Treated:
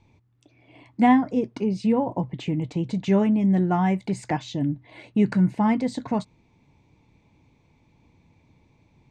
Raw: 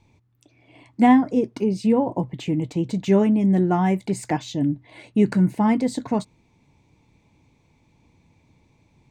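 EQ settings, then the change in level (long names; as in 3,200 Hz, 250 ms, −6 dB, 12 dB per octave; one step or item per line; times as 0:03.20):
dynamic equaliser 360 Hz, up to −5 dB, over −30 dBFS, Q 1.2
high-frequency loss of the air 74 metres
0.0 dB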